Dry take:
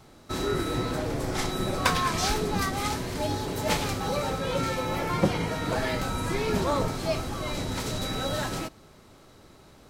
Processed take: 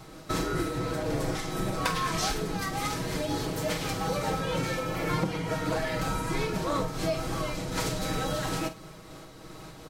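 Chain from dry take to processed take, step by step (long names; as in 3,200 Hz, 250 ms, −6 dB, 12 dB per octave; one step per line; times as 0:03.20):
notch filter 850 Hz, Q 26
comb filter 6.3 ms, depth 60%
downward compressor 4 to 1, threshold −34 dBFS, peak gain reduction 15.5 dB
flutter between parallel walls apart 8 metres, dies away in 0.24 s
amplitude modulation by smooth noise, depth 55%
level +8 dB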